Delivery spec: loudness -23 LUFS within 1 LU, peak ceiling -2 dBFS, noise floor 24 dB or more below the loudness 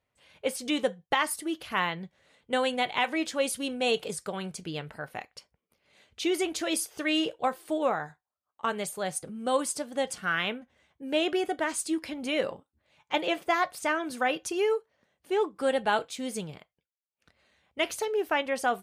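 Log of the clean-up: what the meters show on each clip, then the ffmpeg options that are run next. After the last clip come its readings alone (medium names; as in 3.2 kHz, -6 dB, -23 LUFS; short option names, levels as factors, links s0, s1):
loudness -30.0 LUFS; peak level -12.5 dBFS; loudness target -23.0 LUFS
-> -af "volume=2.24"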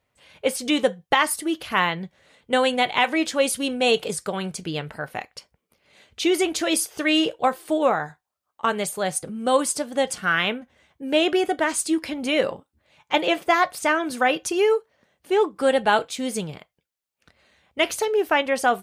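loudness -23.0 LUFS; peak level -5.5 dBFS; noise floor -79 dBFS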